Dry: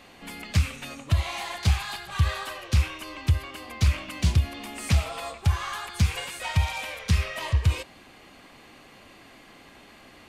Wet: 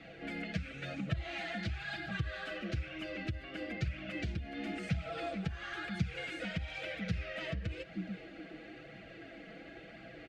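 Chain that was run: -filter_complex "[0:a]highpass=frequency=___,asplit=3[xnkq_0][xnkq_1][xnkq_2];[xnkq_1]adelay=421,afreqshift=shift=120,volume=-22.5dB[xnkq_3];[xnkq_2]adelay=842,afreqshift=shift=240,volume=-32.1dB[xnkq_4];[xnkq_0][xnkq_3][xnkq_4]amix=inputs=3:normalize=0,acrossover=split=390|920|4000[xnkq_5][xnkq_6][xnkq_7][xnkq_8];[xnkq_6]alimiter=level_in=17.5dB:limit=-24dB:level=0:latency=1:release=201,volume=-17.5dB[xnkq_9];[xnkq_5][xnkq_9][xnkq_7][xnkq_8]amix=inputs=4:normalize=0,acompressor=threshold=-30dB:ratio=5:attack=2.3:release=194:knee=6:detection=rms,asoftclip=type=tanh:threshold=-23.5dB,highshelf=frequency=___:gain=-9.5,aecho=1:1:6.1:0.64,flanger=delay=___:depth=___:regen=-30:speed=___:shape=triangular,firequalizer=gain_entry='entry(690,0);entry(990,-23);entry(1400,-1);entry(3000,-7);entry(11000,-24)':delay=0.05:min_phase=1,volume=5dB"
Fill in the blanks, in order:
49, 7.7k, 0.8, 3.9, 1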